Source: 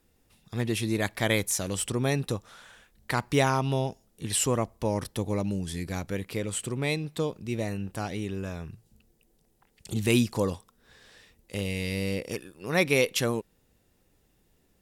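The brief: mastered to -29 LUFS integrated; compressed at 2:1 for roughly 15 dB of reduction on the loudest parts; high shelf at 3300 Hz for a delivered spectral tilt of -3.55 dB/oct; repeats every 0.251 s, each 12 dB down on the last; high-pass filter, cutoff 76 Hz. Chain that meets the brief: HPF 76 Hz; high shelf 3300 Hz +8.5 dB; compressor 2:1, threshold -45 dBFS; feedback echo 0.251 s, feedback 25%, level -12 dB; gain +10.5 dB

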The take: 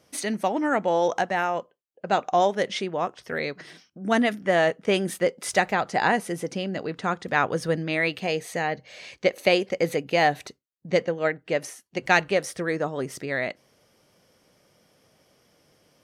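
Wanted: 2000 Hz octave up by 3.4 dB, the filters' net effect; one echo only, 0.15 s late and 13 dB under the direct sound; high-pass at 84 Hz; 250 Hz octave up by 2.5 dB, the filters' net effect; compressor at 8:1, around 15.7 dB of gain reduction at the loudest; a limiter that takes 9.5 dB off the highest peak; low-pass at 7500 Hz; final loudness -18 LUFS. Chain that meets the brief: HPF 84 Hz; LPF 7500 Hz; bell 250 Hz +3.5 dB; bell 2000 Hz +4 dB; compressor 8:1, threshold -30 dBFS; limiter -25 dBFS; echo 0.15 s -13 dB; gain +19 dB

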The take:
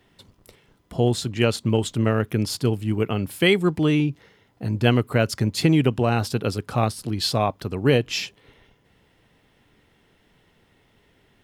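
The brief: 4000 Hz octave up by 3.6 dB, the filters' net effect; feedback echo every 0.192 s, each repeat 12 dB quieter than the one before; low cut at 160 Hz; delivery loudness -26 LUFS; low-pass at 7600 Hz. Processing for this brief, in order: HPF 160 Hz; LPF 7600 Hz; bell 4000 Hz +5 dB; feedback echo 0.192 s, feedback 25%, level -12 dB; gain -3.5 dB

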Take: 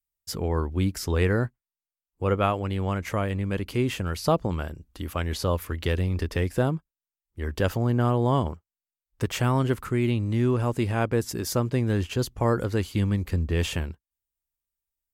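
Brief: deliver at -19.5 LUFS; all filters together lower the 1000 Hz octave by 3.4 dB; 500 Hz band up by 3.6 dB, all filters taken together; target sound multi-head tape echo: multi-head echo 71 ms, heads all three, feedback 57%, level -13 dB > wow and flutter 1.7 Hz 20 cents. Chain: bell 500 Hz +6 dB; bell 1000 Hz -7 dB; multi-head echo 71 ms, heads all three, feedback 57%, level -13 dB; wow and flutter 1.7 Hz 20 cents; gain +5 dB

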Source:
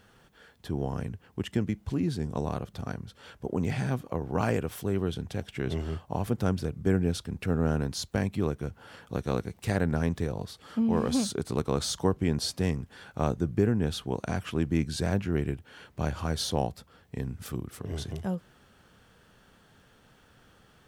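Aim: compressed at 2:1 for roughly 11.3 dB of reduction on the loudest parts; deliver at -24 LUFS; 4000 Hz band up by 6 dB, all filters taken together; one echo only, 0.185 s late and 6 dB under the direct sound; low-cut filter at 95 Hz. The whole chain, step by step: HPF 95 Hz; bell 4000 Hz +7 dB; compressor 2:1, threshold -41 dBFS; echo 0.185 s -6 dB; gain +14.5 dB

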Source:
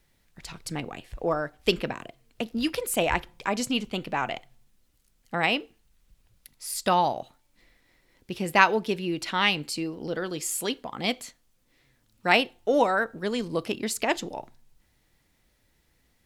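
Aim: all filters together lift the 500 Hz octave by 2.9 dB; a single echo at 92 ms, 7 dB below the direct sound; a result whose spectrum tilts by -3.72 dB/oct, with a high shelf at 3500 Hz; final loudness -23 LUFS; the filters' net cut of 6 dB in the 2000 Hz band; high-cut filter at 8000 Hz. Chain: LPF 8000 Hz; bell 500 Hz +4 dB; bell 2000 Hz -5.5 dB; high shelf 3500 Hz -8.5 dB; echo 92 ms -7 dB; gain +4 dB

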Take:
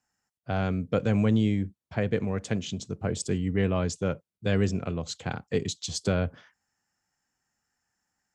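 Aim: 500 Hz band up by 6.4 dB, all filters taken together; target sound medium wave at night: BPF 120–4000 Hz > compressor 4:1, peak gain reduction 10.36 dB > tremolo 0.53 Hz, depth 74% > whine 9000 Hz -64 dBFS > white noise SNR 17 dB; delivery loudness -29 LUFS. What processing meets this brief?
BPF 120–4000 Hz; bell 500 Hz +7.5 dB; compressor 4:1, threshold -27 dBFS; tremolo 0.53 Hz, depth 74%; whine 9000 Hz -64 dBFS; white noise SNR 17 dB; gain +7 dB

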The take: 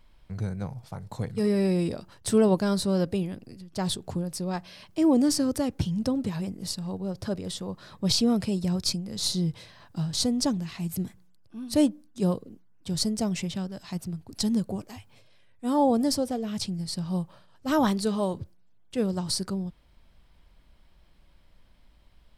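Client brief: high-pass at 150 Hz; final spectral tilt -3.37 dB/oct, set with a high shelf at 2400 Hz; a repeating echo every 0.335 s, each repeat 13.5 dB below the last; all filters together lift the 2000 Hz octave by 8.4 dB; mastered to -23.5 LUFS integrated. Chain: HPF 150 Hz; bell 2000 Hz +7.5 dB; high shelf 2400 Hz +7.5 dB; feedback echo 0.335 s, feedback 21%, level -13.5 dB; gain +2 dB

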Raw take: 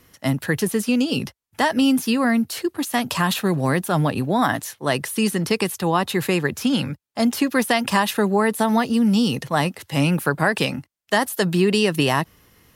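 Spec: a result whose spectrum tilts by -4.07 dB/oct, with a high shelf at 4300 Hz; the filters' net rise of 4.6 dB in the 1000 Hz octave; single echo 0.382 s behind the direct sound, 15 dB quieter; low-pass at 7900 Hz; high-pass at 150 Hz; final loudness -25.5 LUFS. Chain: HPF 150 Hz; LPF 7900 Hz; bell 1000 Hz +6 dB; high shelf 4300 Hz -6 dB; echo 0.382 s -15 dB; gain -5 dB

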